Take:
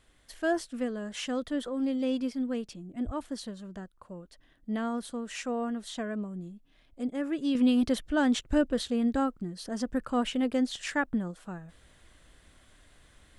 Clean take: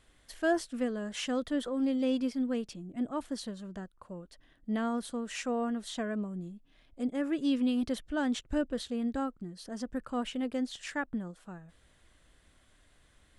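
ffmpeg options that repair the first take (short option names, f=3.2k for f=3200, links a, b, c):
-filter_complex "[0:a]asplit=3[a][b][c];[a]afade=t=out:st=3.05:d=0.02[d];[b]highpass=f=140:w=0.5412,highpass=f=140:w=1.3066,afade=t=in:st=3.05:d=0.02,afade=t=out:st=3.17:d=0.02[e];[c]afade=t=in:st=3.17:d=0.02[f];[d][e][f]amix=inputs=3:normalize=0,asetnsamples=n=441:p=0,asendcmd='7.55 volume volume -5.5dB',volume=0dB"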